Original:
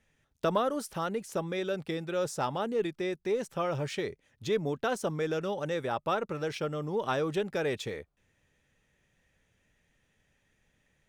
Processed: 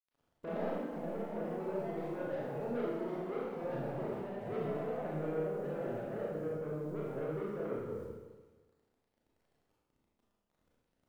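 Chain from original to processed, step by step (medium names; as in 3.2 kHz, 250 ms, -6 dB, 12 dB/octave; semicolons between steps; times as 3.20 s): Chebyshev low-pass 510 Hz, order 3; bit crusher 11-bit; saturation -33 dBFS, distortion -10 dB; ever faster or slower copies 120 ms, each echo +4 st, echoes 3, each echo -6 dB; Schroeder reverb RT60 1.3 s, combs from 26 ms, DRR -6 dB; trim -7.5 dB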